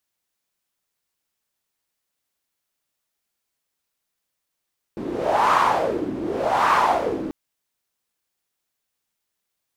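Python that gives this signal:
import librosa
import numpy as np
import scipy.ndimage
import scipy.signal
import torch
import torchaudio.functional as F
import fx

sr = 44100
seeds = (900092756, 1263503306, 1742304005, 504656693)

y = fx.wind(sr, seeds[0], length_s=2.34, low_hz=290.0, high_hz=1100.0, q=4.2, gusts=2, swing_db=10.5)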